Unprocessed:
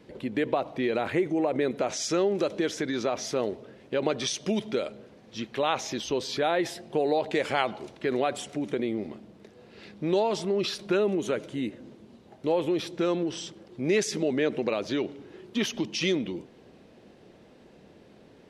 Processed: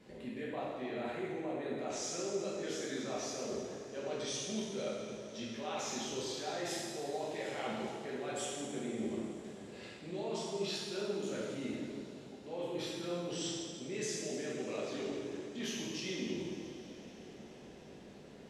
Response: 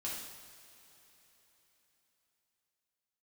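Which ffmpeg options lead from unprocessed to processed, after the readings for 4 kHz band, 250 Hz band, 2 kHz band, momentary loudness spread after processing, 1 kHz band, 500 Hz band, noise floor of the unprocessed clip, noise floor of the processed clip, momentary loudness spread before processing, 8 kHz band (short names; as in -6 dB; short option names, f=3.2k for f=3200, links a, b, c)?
-8.0 dB, -11.0 dB, -11.0 dB, 11 LU, -12.0 dB, -11.5 dB, -55 dBFS, -53 dBFS, 9 LU, -4.5 dB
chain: -filter_complex "[0:a]equalizer=f=7.3k:t=o:w=0.43:g=6.5,areverse,acompressor=threshold=-36dB:ratio=6,areverse[a];[1:a]atrim=start_sample=2205,asetrate=29547,aresample=44100[b];[a][b]afir=irnorm=-1:irlink=0,volume=-4dB"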